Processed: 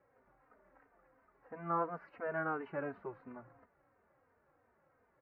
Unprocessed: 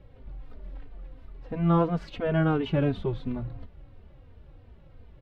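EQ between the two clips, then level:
inverse Chebyshev low-pass filter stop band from 3,200 Hz, stop band 40 dB
first difference
low-shelf EQ 99 Hz −9.5 dB
+11.5 dB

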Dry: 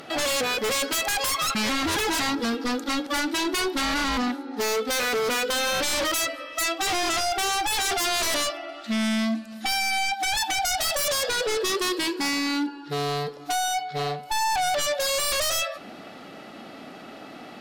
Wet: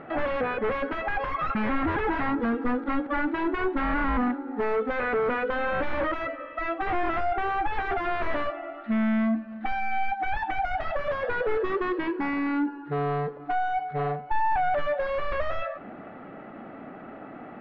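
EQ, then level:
low-pass filter 1,900 Hz 24 dB per octave
low-shelf EQ 83 Hz +8 dB
0.0 dB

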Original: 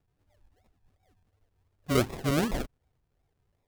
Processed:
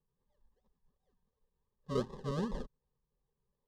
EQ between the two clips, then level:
Butterworth band-reject 1,400 Hz, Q 4.1
low-pass filter 3,800 Hz 12 dB per octave
phaser with its sweep stopped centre 460 Hz, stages 8
−5.5 dB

